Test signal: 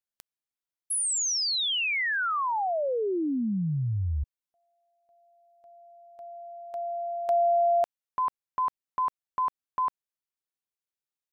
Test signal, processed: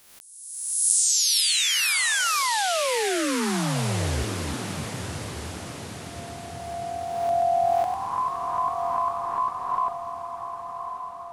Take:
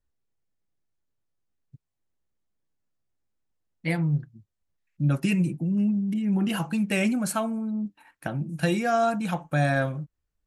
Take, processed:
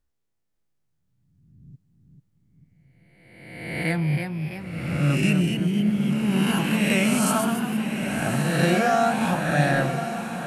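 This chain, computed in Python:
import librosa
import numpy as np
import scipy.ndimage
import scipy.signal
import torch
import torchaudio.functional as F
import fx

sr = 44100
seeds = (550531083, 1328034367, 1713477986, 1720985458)

y = fx.spec_swells(x, sr, rise_s=1.25)
y = fx.echo_pitch(y, sr, ms=539, semitones=1, count=3, db_per_echo=-6.0)
y = fx.echo_diffused(y, sr, ms=1142, feedback_pct=54, wet_db=-8.5)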